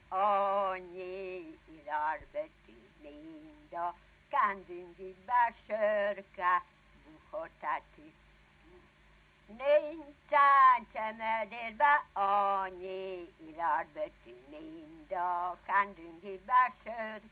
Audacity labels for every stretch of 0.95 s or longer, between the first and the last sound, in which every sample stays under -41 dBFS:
7.790000	9.600000	silence